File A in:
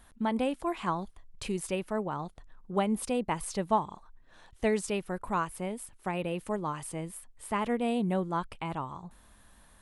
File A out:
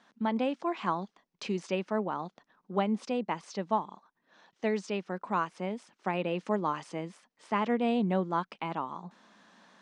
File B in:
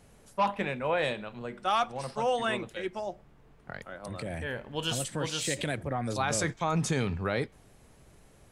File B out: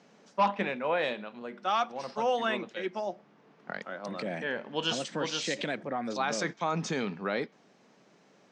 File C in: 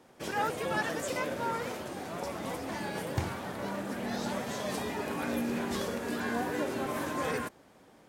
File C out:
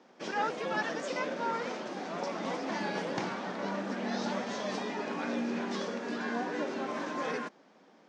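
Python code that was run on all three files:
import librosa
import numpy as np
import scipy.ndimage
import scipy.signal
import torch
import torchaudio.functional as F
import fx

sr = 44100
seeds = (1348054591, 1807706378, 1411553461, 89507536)

y = scipy.signal.sosfilt(scipy.signal.ellip(3, 1.0, 40, [190.0, 5900.0], 'bandpass', fs=sr, output='sos'), x)
y = fx.rider(y, sr, range_db=5, speed_s=2.0)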